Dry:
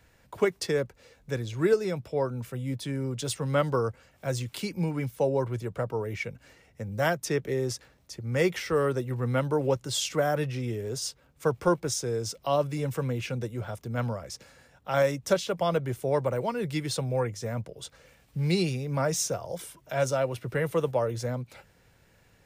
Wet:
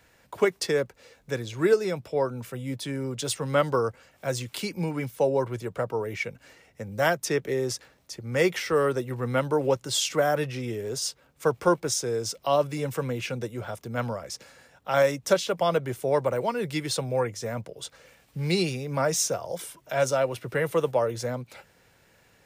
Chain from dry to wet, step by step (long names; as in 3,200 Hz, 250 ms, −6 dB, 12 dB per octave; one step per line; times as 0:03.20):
low-shelf EQ 160 Hz −10 dB
level +3.5 dB